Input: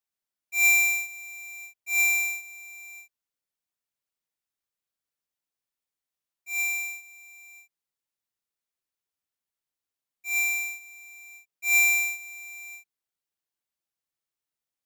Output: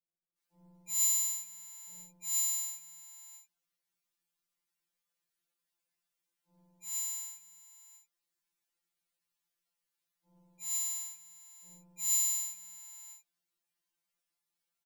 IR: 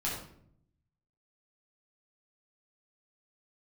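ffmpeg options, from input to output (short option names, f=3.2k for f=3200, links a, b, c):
-filter_complex "[0:a]acrossover=split=180|3000[a][b][c];[b]acompressor=threshold=-38dB:ratio=2[d];[a][d][c]amix=inputs=3:normalize=0,acrossover=split=580[e][f];[f]adelay=370[g];[e][g]amix=inputs=2:normalize=0,afftfilt=real='re*2.83*eq(mod(b,8),0)':imag='im*2.83*eq(mod(b,8),0)':win_size=2048:overlap=0.75,volume=4.5dB"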